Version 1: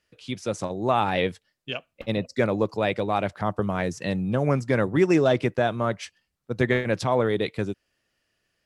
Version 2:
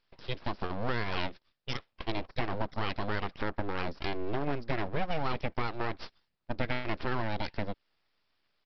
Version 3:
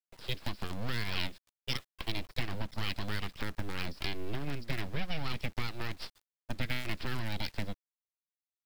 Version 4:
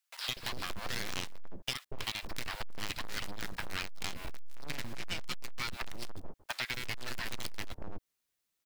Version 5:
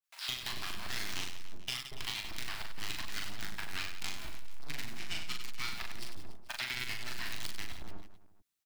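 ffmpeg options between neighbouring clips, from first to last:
ffmpeg -i in.wav -af "acompressor=threshold=-28dB:ratio=3,aresample=11025,aeval=exprs='abs(val(0))':channel_layout=same,aresample=44100" out.wav
ffmpeg -i in.wav -filter_complex "[0:a]highshelf=frequency=3600:gain=7.5,acrossover=split=250|1800[link_01][link_02][link_03];[link_02]acompressor=threshold=-43dB:ratio=16[link_04];[link_01][link_04][link_03]amix=inputs=3:normalize=0,acrusher=bits=7:dc=4:mix=0:aa=0.000001" out.wav
ffmpeg -i in.wav -filter_complex "[0:a]acrossover=split=840[link_01][link_02];[link_01]adelay=240[link_03];[link_03][link_02]amix=inputs=2:normalize=0,aeval=exprs='clip(val(0),-1,0.00944)':channel_layout=same,acompressor=threshold=-46dB:ratio=6,volume=13dB" out.wav
ffmpeg -i in.wav -filter_complex "[0:a]equalizer=frequency=510:width=6.7:gain=-14,asplit=2[link_01][link_02];[link_02]aecho=0:1:40|96|174.4|284.2|437.8:0.631|0.398|0.251|0.158|0.1[link_03];[link_01][link_03]amix=inputs=2:normalize=0,adynamicequalizer=threshold=0.00282:dfrequency=1500:dqfactor=0.7:tfrequency=1500:tqfactor=0.7:attack=5:release=100:ratio=0.375:range=2:mode=boostabove:tftype=highshelf,volume=-5.5dB" out.wav

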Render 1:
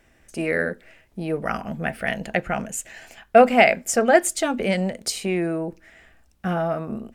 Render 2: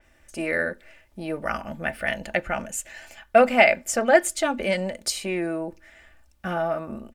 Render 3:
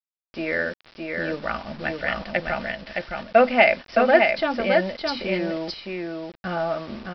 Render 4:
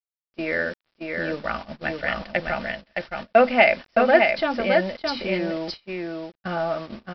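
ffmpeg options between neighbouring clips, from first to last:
ffmpeg -i in.wav -af "equalizer=frequency=260:width=1.1:gain=-5.5,aecho=1:1:3.4:0.43,adynamicequalizer=threshold=0.02:dfrequency=4600:dqfactor=0.7:tfrequency=4600:tqfactor=0.7:attack=5:release=100:ratio=0.375:range=2:mode=cutabove:tftype=highshelf,volume=-1dB" out.wav
ffmpeg -i in.wav -af "aresample=11025,acrusher=bits=6:mix=0:aa=0.000001,aresample=44100,aecho=1:1:615:0.631" out.wav
ffmpeg -i in.wav -af "agate=range=-23dB:threshold=-33dB:ratio=16:detection=peak" out.wav

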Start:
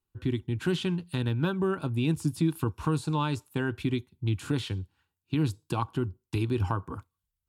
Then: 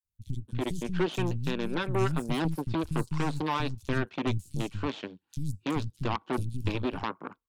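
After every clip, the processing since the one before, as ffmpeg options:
ffmpeg -i in.wav -filter_complex "[0:a]aphaser=in_gain=1:out_gain=1:delay=4:decay=0.28:speed=1:type=sinusoidal,aeval=exprs='0.2*(cos(1*acos(clip(val(0)/0.2,-1,1)))-cos(1*PI/2))+0.0562*(cos(5*acos(clip(val(0)/0.2,-1,1)))-cos(5*PI/2))+0.0501*(cos(7*acos(clip(val(0)/0.2,-1,1)))-cos(7*PI/2))+0.0355*(cos(8*acos(clip(val(0)/0.2,-1,1)))-cos(8*PI/2))':channel_layout=same,acrossover=split=190|5400[link_01][link_02][link_03];[link_01]adelay=40[link_04];[link_02]adelay=330[link_05];[link_04][link_05][link_03]amix=inputs=3:normalize=0,volume=-3.5dB" out.wav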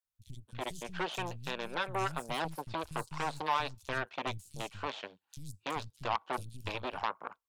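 ffmpeg -i in.wav -af "lowshelf=frequency=440:width_type=q:width=1.5:gain=-11,volume=-1.5dB" out.wav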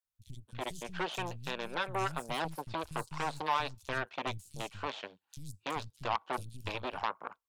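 ffmpeg -i in.wav -af anull out.wav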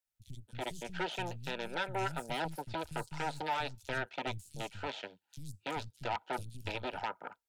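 ffmpeg -i in.wav -filter_complex "[0:a]acrossover=split=130|4300[link_01][link_02][link_03];[link_03]alimiter=level_in=17.5dB:limit=-24dB:level=0:latency=1:release=39,volume=-17.5dB[link_04];[link_01][link_02][link_04]amix=inputs=3:normalize=0,asoftclip=type=tanh:threshold=-21dB,asuperstop=centerf=1100:order=8:qfactor=5.1" out.wav

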